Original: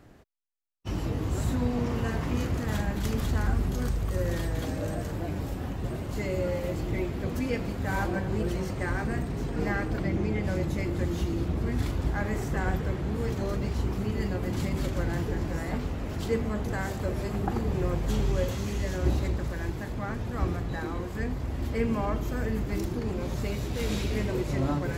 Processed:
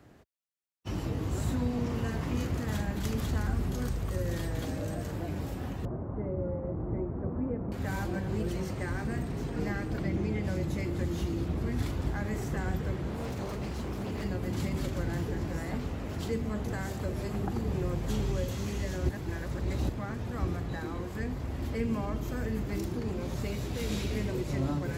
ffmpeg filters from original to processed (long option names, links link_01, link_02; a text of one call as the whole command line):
ffmpeg -i in.wav -filter_complex "[0:a]asettb=1/sr,asplit=3[link_01][link_02][link_03];[link_01]atrim=end=5.854[link_04];[link_02]atrim=start=5.85:end=7.72,asetpts=PTS-STARTPTS,afade=type=in:duration=0.004:curve=qsin,afade=type=out:start_time=1.866:duration=0.004:curve=qsin,lowpass=frequency=1200:width=0.5412,lowpass=frequency=1200:width=1.3066[link_05];[link_03]atrim=start=7.716[link_06];[link_04][link_05]acrossfade=duration=0.004:curve1=hsin:curve2=qsin[link_07];[link_07][link_06]acrossfade=duration=0.004:curve1=qsin:curve2=hsin,asettb=1/sr,asplit=3[link_08][link_09][link_10];[link_08]atrim=end=13.064[link_11];[link_09]atrim=start=13.06:end=14.24,asetpts=PTS-STARTPTS,afade=type=in:duration=0.004:curve=qsin,afade=type=out:start_time=1.176:duration=0.004:curve=qsin,aeval=exprs='0.0447*(abs(mod(val(0)/0.0447+3,4)-2)-1)':channel_layout=same[link_12];[link_10]atrim=start=14.236[link_13];[link_11][link_12]acrossfade=duration=0.004:curve1=hsin:curve2=qsin[link_14];[link_14][link_13]acrossfade=duration=0.004:curve1=qsin:curve2=hsin,asplit=3[link_15][link_16][link_17];[link_15]atrim=end=19.092[link_18];[link_16]atrim=start=19.088:end=19.892,asetpts=PTS-STARTPTS,areverse[link_19];[link_17]atrim=start=19.888[link_20];[link_18][link_19]acrossfade=duration=0.004:curve1=hsin:curve2=hsin[link_21];[link_21][link_20]acrossfade=duration=0.004:curve1=hsin:curve2=hsin,highpass=53,acrossover=split=350|3000[link_22][link_23][link_24];[link_23]acompressor=threshold=-37dB:ratio=2.5[link_25];[link_22][link_25][link_24]amix=inputs=3:normalize=0,volume=-2dB" out.wav